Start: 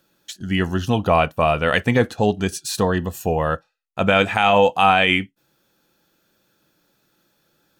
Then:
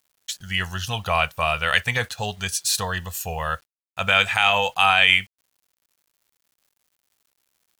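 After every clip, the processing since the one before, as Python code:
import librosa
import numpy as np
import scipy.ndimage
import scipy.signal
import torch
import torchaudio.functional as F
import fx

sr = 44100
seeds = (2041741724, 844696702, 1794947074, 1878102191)

y = fx.tone_stack(x, sr, knobs='10-0-10')
y = fx.quant_dither(y, sr, seeds[0], bits=10, dither='none')
y = y * librosa.db_to_amplitude(6.0)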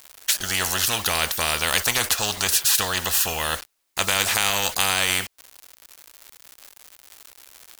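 y = fx.peak_eq(x, sr, hz=150.0, db=-12.0, octaves=1.3)
y = fx.spectral_comp(y, sr, ratio=4.0)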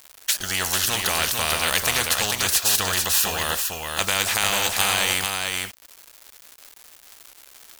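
y = x + 10.0 ** (-4.0 / 20.0) * np.pad(x, (int(444 * sr / 1000.0), 0))[:len(x)]
y = y * librosa.db_to_amplitude(-1.0)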